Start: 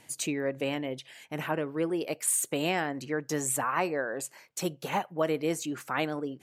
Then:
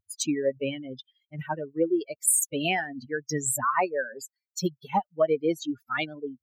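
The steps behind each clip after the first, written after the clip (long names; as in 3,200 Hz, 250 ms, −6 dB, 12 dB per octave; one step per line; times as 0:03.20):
spectral dynamics exaggerated over time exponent 3
level +9 dB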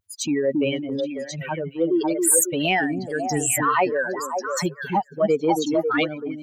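echo through a band-pass that steps 273 ms, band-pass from 250 Hz, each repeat 1.4 octaves, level −0.5 dB
transient designer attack −6 dB, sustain +3 dB
level +6 dB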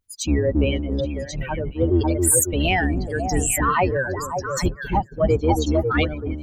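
sub-octave generator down 2 octaves, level +4 dB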